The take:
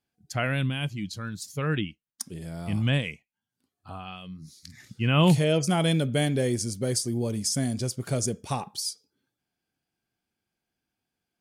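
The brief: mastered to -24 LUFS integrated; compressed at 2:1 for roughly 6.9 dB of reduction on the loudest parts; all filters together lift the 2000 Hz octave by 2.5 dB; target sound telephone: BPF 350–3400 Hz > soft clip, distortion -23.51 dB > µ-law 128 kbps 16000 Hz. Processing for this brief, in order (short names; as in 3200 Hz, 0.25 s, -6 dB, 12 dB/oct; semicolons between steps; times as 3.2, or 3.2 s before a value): bell 2000 Hz +4 dB; compressor 2:1, threshold -28 dBFS; BPF 350–3400 Hz; soft clip -18.5 dBFS; gain +12 dB; µ-law 128 kbps 16000 Hz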